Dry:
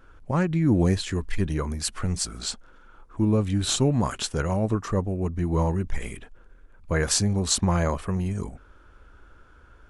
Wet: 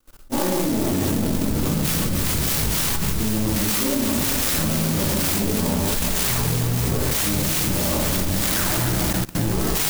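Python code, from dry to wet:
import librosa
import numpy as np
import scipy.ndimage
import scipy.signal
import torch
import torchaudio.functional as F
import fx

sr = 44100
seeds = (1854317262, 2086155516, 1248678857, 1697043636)

p1 = fx.lower_of_two(x, sr, delay_ms=3.4)
p2 = fx.transient(p1, sr, attack_db=4, sustain_db=-8)
p3 = fx.spec_paint(p2, sr, seeds[0], shape='fall', start_s=4.37, length_s=0.22, low_hz=1000.0, high_hz=8900.0, level_db=-26.0)
p4 = fx.band_shelf(p3, sr, hz=4300.0, db=10.0, octaves=1.7)
p5 = fx.rev_schroeder(p4, sr, rt60_s=0.57, comb_ms=29, drr_db=-8.5)
p6 = fx.echo_pitch(p5, sr, ms=256, semitones=-5, count=2, db_per_echo=-3.0)
p7 = p6 + fx.echo_alternate(p6, sr, ms=142, hz=1200.0, feedback_pct=77, wet_db=-5.5, dry=0)
p8 = fx.dynamic_eq(p7, sr, hz=7500.0, q=1.4, threshold_db=-30.0, ratio=4.0, max_db=5)
p9 = fx.level_steps(p8, sr, step_db=22)
p10 = fx.clock_jitter(p9, sr, seeds[1], jitter_ms=0.13)
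y = p10 * 10.0 ** (1.0 / 20.0)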